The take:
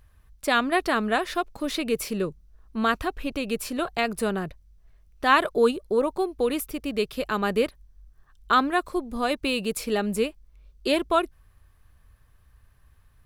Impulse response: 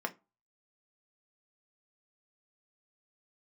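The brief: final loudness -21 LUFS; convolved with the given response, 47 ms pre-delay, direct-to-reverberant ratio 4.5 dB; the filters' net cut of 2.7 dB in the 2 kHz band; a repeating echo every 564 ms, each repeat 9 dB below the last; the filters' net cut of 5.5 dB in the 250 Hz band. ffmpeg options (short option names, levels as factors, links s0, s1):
-filter_complex "[0:a]equalizer=f=250:t=o:g=-7,equalizer=f=2000:t=o:g=-3.5,aecho=1:1:564|1128|1692|2256:0.355|0.124|0.0435|0.0152,asplit=2[s0][s1];[1:a]atrim=start_sample=2205,adelay=47[s2];[s1][s2]afir=irnorm=-1:irlink=0,volume=0.355[s3];[s0][s3]amix=inputs=2:normalize=0,volume=1.88"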